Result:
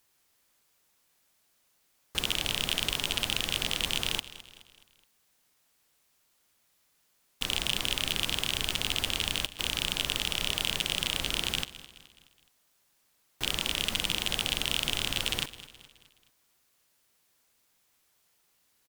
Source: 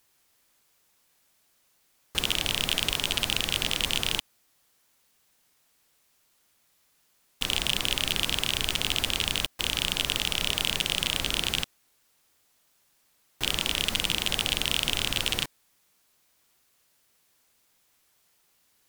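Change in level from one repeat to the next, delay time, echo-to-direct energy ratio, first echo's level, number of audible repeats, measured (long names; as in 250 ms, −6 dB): −6.5 dB, 211 ms, −15.5 dB, −16.5 dB, 3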